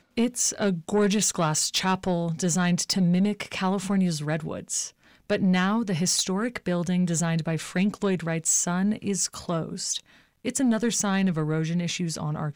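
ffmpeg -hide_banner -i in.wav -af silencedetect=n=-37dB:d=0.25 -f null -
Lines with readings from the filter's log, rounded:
silence_start: 4.88
silence_end: 5.30 | silence_duration: 0.41
silence_start: 10.00
silence_end: 10.45 | silence_duration: 0.45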